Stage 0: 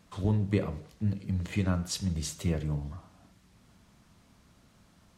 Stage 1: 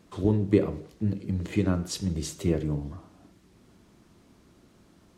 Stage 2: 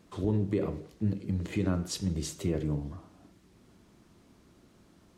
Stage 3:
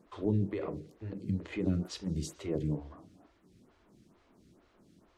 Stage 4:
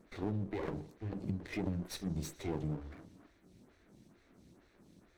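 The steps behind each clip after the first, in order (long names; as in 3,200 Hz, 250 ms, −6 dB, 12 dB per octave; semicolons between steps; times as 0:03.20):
parametric band 350 Hz +12 dB 0.9 octaves
brickwall limiter −16.5 dBFS, peak gain reduction 8 dB; level −2 dB
high-shelf EQ 8,600 Hz −8 dB; phaser with staggered stages 2.2 Hz
lower of the sound and its delayed copy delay 0.51 ms; downward compressor 6 to 1, threshold −34 dBFS, peak gain reduction 9 dB; level +1 dB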